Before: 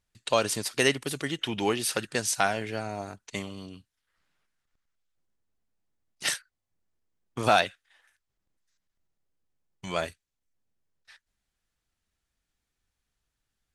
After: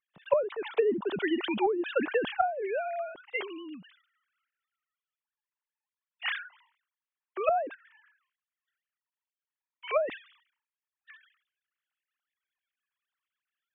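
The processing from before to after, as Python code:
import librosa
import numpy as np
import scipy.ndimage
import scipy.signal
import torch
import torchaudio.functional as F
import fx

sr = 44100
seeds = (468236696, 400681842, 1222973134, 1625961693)

y = fx.sine_speech(x, sr)
y = fx.env_lowpass_down(y, sr, base_hz=330.0, full_db=-23.0)
y = fx.sustainer(y, sr, db_per_s=110.0)
y = y * 10.0 ** (4.5 / 20.0)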